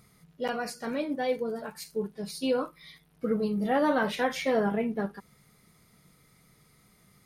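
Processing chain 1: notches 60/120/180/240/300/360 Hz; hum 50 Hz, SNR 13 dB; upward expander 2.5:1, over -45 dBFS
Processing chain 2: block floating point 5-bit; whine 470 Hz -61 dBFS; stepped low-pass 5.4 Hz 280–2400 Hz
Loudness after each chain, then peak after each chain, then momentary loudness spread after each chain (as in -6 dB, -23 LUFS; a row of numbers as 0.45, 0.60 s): -34.0, -26.0 LUFS; -15.0, -9.0 dBFS; 17, 12 LU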